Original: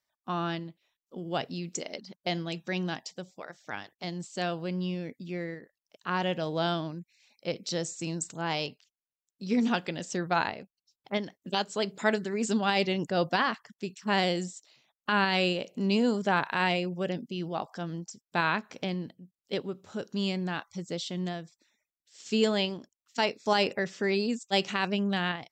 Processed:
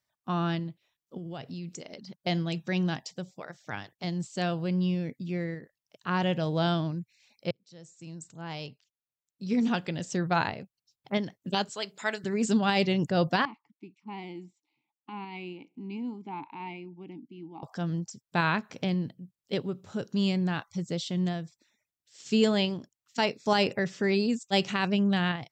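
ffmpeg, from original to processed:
-filter_complex "[0:a]asettb=1/sr,asplit=3[s0][s1][s2];[s0]atrim=end=1.174[s3];[s1]atrim=start=1.17:end=2.24,asetpts=PTS-STARTPTS,afade=t=in:d=0.004:c=qsin,afade=t=out:st=1.066:d=0.004:c=qsin,acompressor=threshold=0.00794:ratio=2.5:attack=3.2:release=140:knee=1:detection=peak[s4];[s2]atrim=start=2.236[s5];[s3][s4]acrossfade=d=0.004:c1=hsin:c2=qsin[s6];[s6][s5]acrossfade=d=0.004:c1=qsin:c2=hsin,asettb=1/sr,asplit=3[s7][s8][s9];[s7]atrim=end=11.694[s10];[s8]atrim=start=11.69:end=12.24,asetpts=PTS-STARTPTS,afade=t=in:d=0.004:c=qsin,afade=t=out:st=0.546:d=0.004:c=qsin,highpass=f=1200:p=1[s11];[s9]atrim=start=12.236[s12];[s10][s11]acrossfade=d=0.004:c1=hsin:c2=qsin[s13];[s13][s12]acrossfade=d=0.004:c1=qsin:c2=hsin,asettb=1/sr,asplit=3[s14][s15][s16];[s14]atrim=end=13.454[s17];[s15]atrim=start=13.45:end=17.63,asetpts=PTS-STARTPTS,afade=t=in:d=0.004:c=qsin,afade=t=out:st=4.176:d=0.004:c=qsin,asplit=3[s18][s19][s20];[s18]bandpass=f=300:t=q:w=8,volume=1[s21];[s19]bandpass=f=870:t=q:w=8,volume=0.501[s22];[s20]bandpass=f=2240:t=q:w=8,volume=0.355[s23];[s21][s22][s23]amix=inputs=3:normalize=0[s24];[s16]atrim=start=17.626[s25];[s17][s24]acrossfade=d=0.004:c1=hsin:c2=qsin[s26];[s26][s25]acrossfade=d=0.004:c1=qsin:c2=hsin,asplit=2[s27][s28];[s27]atrim=end=7.51,asetpts=PTS-STARTPTS,afade=t=out:st=7.506:d=0.004:c=hsin[s29];[s28]atrim=start=7.51,asetpts=PTS-STARTPTS,afade=t=in:d=2.85[s30];[s29][s30]concat=n=2:v=0:a=1,equalizer=f=120:w=1.2:g=11"

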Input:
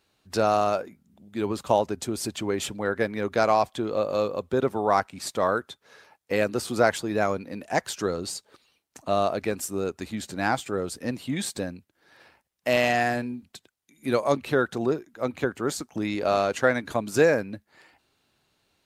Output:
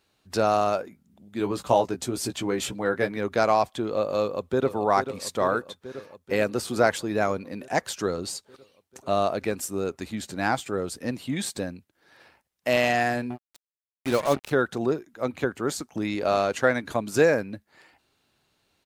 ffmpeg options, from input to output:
-filter_complex "[0:a]asettb=1/sr,asplit=3[s0][s1][s2];[s0]atrim=end=1.384[s3];[s1]atrim=start=1.38:end=3.17,asetpts=PTS-STARTPTS,afade=t=in:d=0.004:c=qsin,afade=t=out:st=1.786:d=0.004:c=qsin,asplit=2[s4][s5];[s5]adelay=16,volume=0.501[s6];[s4][s6]amix=inputs=2:normalize=0,atrim=end_sample=78939[s7];[s2]atrim=start=3.166[s8];[s3][s7]acrossfade=d=0.004:c1=hsin:c2=qsin[s9];[s9][s8]acrossfade=d=0.004:c1=qsin:c2=hsin,asplit=2[s10][s11];[s11]afade=t=in:st=4.21:d=0.01,afade=t=out:st=4.74:d=0.01,aecho=0:1:440|880|1320|1760|2200|2640|3080|3520|3960|4400|4840|5280:0.316228|0.237171|0.177878|0.133409|0.100056|0.0750423|0.0562817|0.0422113|0.0316585|0.0237439|0.0178079|0.0133559[s12];[s10][s12]amix=inputs=2:normalize=0,asettb=1/sr,asplit=3[s13][s14][s15];[s13]atrim=end=13.304[s16];[s14]atrim=start=13.3:end=14.51,asetpts=PTS-STARTPTS,afade=t=in:d=0.004:c=qsin,afade=t=out:st=1.206:d=0.004:c=qsin,acrusher=bits=4:mix=0:aa=0.5[s17];[s15]atrim=start=14.506[s18];[s16][s17]acrossfade=d=0.004:c1=hsin:c2=qsin[s19];[s19][s18]acrossfade=d=0.004:c1=qsin:c2=hsin"

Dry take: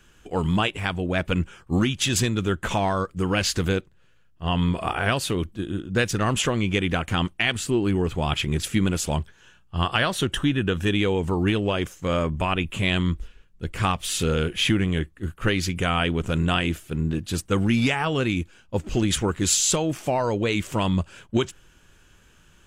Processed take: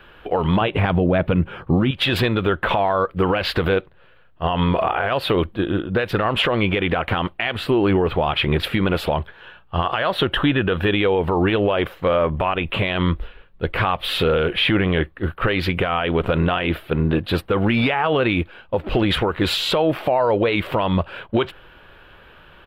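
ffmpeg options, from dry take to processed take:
-filter_complex "[0:a]asettb=1/sr,asplit=3[s0][s1][s2];[s0]atrim=end=0.614[s3];[s1]atrim=start=0.61:end=1.91,asetpts=PTS-STARTPTS,afade=t=in:d=0.004:c=qsin,afade=t=out:st=1.296:d=0.004:c=qsin,equalizer=f=150:w=0.45:g=13[s4];[s2]atrim=start=1.906[s5];[s3][s4]acrossfade=d=0.004:c1=hsin:c2=qsin[s6];[s6][s5]acrossfade=d=0.004:c1=qsin:c2=hsin,firequalizer=gain_entry='entry(230,0);entry(540,12);entry(1700,7);entry(4000,2);entry(6400,-27);entry(13000,-4)':delay=0.05:min_phase=1,acompressor=threshold=0.158:ratio=6,alimiter=level_in=4.73:limit=0.891:release=50:level=0:latency=1,volume=0.376"

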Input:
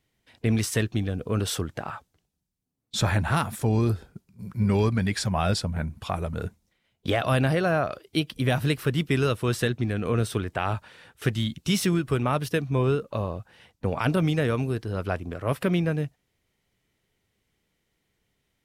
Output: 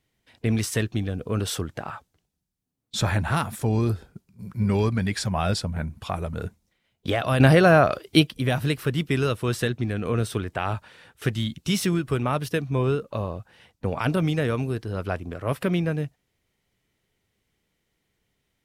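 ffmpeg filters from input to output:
-filter_complex "[0:a]asplit=3[s0][s1][s2];[s0]atrim=end=7.402[s3];[s1]atrim=start=7.398:end=8.272,asetpts=PTS-STARTPTS,volume=2.51[s4];[s2]atrim=start=8.268[s5];[s3][s4]acrossfade=d=0.004:c1=hsin:c2=hsin[s6];[s6][s5]acrossfade=d=0.004:c1=hsin:c2=hsin"

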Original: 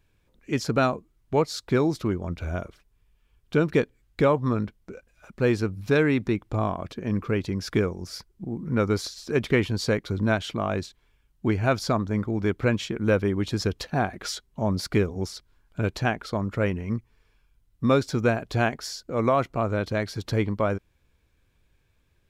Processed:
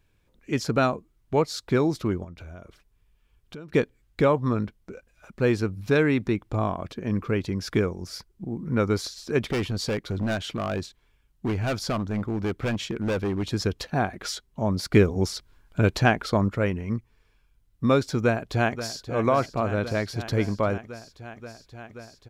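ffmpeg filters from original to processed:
-filter_complex "[0:a]asettb=1/sr,asplit=3[s0][s1][s2];[s0]atrim=end=2.244[s3];[s1]atrim=start=2.24:end=3.74,asetpts=PTS-STARTPTS,afade=t=in:d=0.004:c=qsin,afade=t=out:st=1.496:d=0.004:c=qsin,acompressor=threshold=0.01:ratio=4:attack=3.2:release=140:knee=1:detection=peak[s4];[s2]atrim=start=3.736[s5];[s3][s4]acrossfade=d=0.004:c1=hsin:c2=qsin[s6];[s6][s5]acrossfade=d=0.004:c1=qsin:c2=hsin,asettb=1/sr,asplit=3[s7][s8][s9];[s7]atrim=end=9.514[s10];[s8]atrim=start=9.51:end=13.43,asetpts=PTS-STARTPTS,afade=t=in:d=0.004:c=qsin,afade=t=out:st=3.916:d=0.004:c=qsin,volume=13.3,asoftclip=hard,volume=0.075[s11];[s9]atrim=start=13.426[s12];[s10][s11]acrossfade=d=0.004:c1=hsin:c2=qsin[s13];[s13][s12]acrossfade=d=0.004:c1=qsin:c2=hsin,asettb=1/sr,asplit=3[s14][s15][s16];[s14]atrim=end=14.944[s17];[s15]atrim=start=14.94:end=16.49,asetpts=PTS-STARTPTS,afade=t=in:d=0.004:c=qsin,afade=t=out:st=1.546:d=0.004:c=qsin,acontrast=33[s18];[s16]atrim=start=16.486[s19];[s17][s18]acrossfade=d=0.004:c1=hsin:c2=qsin[s20];[s20][s19]acrossfade=d=0.004:c1=qsin:c2=hsin,asplit=2[s21][s22];[s22]afade=t=in:st=18.18:d=0.01,afade=t=out:st=19.06:d=0.01,aecho=0:1:530|1060|1590|2120|2650|3180|3710|4240|4770|5300|5830|6360:0.251189|0.21351|0.181484|0.154261|0.131122|0.111454|0.0947357|0.0805253|0.0684465|0.0581795|0.0494526|0.0420347[s23];[s21][s23]amix=inputs=2:normalize=0"

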